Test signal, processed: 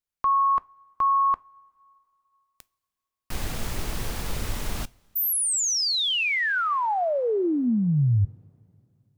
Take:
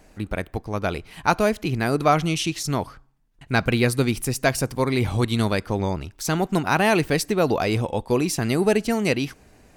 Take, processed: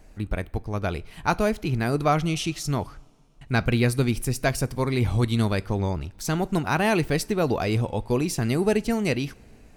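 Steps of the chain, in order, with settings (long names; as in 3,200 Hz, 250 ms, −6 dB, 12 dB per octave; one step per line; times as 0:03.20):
low-shelf EQ 110 Hz +10.5 dB
coupled-rooms reverb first 0.23 s, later 2.8 s, from −21 dB, DRR 17 dB
level −4 dB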